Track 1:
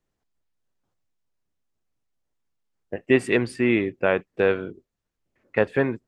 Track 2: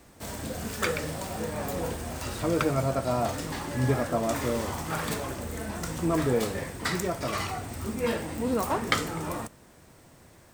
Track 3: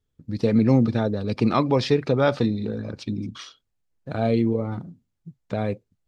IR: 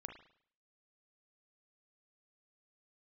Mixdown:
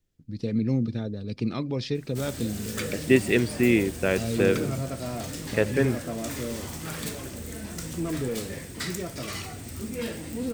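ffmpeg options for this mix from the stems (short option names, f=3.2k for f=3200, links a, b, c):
-filter_complex "[0:a]volume=2.5dB[a];[1:a]lowshelf=f=120:g=-5.5,asoftclip=type=tanh:threshold=-20.5dB,adelay=1950,volume=2dB[b];[2:a]volume=-5.5dB[c];[a][b][c]amix=inputs=3:normalize=0,equalizer=f=930:t=o:w=1.7:g=-12.5"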